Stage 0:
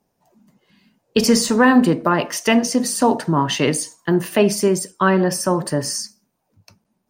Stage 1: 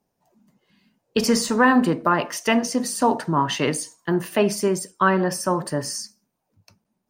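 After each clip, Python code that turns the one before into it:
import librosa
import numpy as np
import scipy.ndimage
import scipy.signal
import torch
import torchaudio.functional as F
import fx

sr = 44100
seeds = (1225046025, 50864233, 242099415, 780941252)

y = fx.dynamic_eq(x, sr, hz=1200.0, q=0.94, threshold_db=-29.0, ratio=4.0, max_db=5)
y = y * 10.0 ** (-5.0 / 20.0)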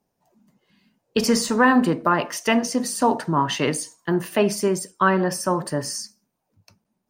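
y = x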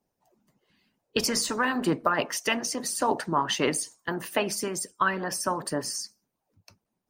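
y = fx.hpss(x, sr, part='harmonic', gain_db=-13)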